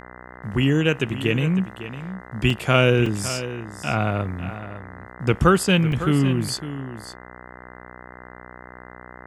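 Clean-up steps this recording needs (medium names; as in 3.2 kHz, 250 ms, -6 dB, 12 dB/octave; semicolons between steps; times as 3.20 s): de-hum 61.8 Hz, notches 33; interpolate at 2.50/3.06/5.92 s, 2.8 ms; inverse comb 554 ms -12.5 dB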